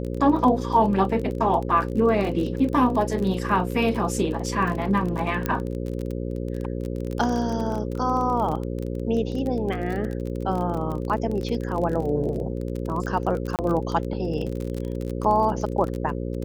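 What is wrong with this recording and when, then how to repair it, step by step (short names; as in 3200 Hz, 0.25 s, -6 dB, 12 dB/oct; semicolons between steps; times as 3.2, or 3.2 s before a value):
buzz 60 Hz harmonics 9 -29 dBFS
crackle 29/s -28 dBFS
5.46 pop -11 dBFS
13.56–13.59 gap 28 ms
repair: de-click; de-hum 60 Hz, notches 9; interpolate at 13.56, 28 ms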